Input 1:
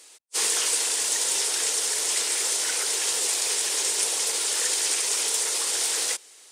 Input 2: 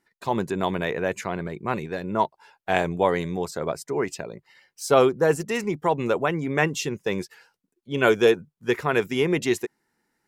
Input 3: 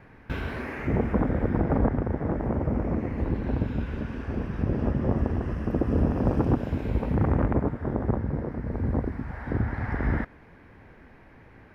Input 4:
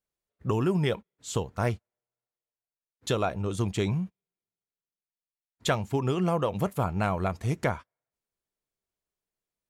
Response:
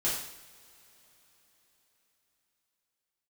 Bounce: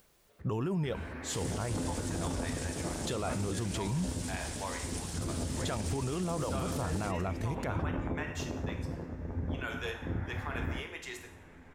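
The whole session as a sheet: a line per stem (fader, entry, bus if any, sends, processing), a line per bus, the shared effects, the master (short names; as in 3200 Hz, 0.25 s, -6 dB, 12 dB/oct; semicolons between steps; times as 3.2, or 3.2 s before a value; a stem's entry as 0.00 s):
-16.5 dB, 0.95 s, no bus, no send, dry
-15.0 dB, 1.60 s, no bus, send -8 dB, HPF 900 Hz 12 dB/oct
-5.5 dB, 0.55 s, bus A, send -12.5 dB, resonator 86 Hz, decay 0.18 s, harmonics all, mix 80%
+2.0 dB, 0.00 s, bus A, no send, dry
bus A: 0.0 dB, upward compressor, threshold -46 dBFS; limiter -21.5 dBFS, peak gain reduction 11 dB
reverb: on, pre-delay 3 ms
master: bell 9300 Hz -2.5 dB 2.6 oct; limiter -25 dBFS, peak gain reduction 7.5 dB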